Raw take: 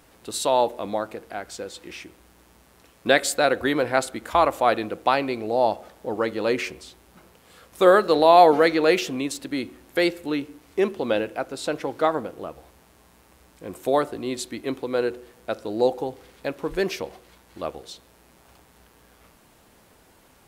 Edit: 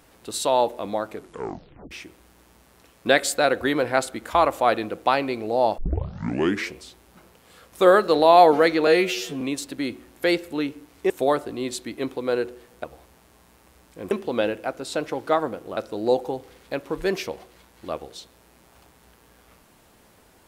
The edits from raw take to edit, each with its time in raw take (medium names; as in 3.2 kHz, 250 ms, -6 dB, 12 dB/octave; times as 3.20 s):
1.10 s: tape stop 0.81 s
5.78 s: tape start 0.94 s
8.87–9.14 s: stretch 2×
10.83–12.49 s: swap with 13.76–15.50 s